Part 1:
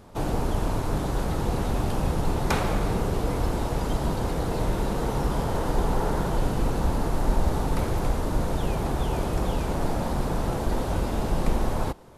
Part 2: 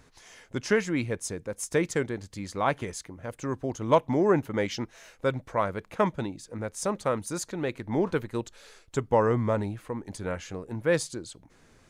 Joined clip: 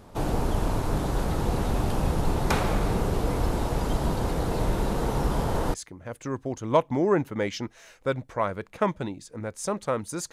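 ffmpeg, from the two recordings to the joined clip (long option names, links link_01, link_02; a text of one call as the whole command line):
ffmpeg -i cue0.wav -i cue1.wav -filter_complex "[0:a]apad=whole_dur=10.32,atrim=end=10.32,atrim=end=5.742[link_01];[1:a]atrim=start=2.918:end=7.5[link_02];[link_01][link_02]acrossfade=duration=0.004:curve1=hsin:curve2=hsin" out.wav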